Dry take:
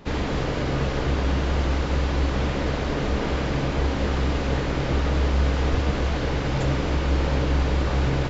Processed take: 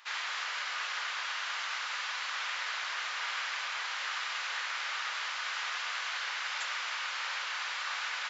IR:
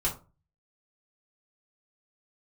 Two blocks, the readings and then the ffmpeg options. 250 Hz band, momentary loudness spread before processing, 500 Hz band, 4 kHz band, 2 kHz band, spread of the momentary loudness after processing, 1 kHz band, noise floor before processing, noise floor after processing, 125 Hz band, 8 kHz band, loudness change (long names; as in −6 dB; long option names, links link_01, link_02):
below −40 dB, 3 LU, −28.0 dB, 0.0 dB, −0.5 dB, 1 LU, −6.5 dB, −26 dBFS, −37 dBFS, below −40 dB, can't be measured, −9.5 dB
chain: -af "highpass=frequency=1200:width=0.5412,highpass=frequency=1200:width=1.3066"